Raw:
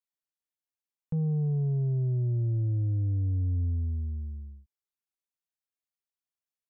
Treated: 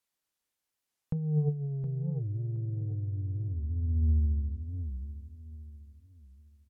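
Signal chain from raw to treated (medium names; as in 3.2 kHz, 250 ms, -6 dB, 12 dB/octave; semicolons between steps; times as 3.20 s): low-pass that closes with the level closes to 650 Hz, closed at -27.5 dBFS; de-hum 149.9 Hz, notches 6; compressor with a negative ratio -32 dBFS, ratio -0.5; on a send: feedback delay 718 ms, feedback 33%, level -10.5 dB; on the sum: warped record 45 rpm, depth 250 cents; trim +3.5 dB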